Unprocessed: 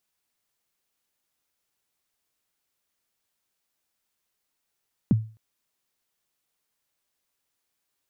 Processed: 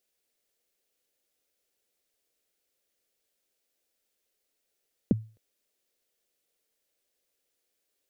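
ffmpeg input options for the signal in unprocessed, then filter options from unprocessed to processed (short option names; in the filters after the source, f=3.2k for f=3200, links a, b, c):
-f lavfi -i "aevalsrc='0.237*pow(10,-3*t/0.36)*sin(2*PI*(270*0.025/log(110/270)*(exp(log(110/270)*min(t,0.025)/0.025)-1)+110*max(t-0.025,0)))':d=0.26:s=44100"
-af "equalizer=f=125:t=o:w=1:g=-10,equalizer=f=500:t=o:w=1:g=10,equalizer=f=1k:t=o:w=1:g=-10"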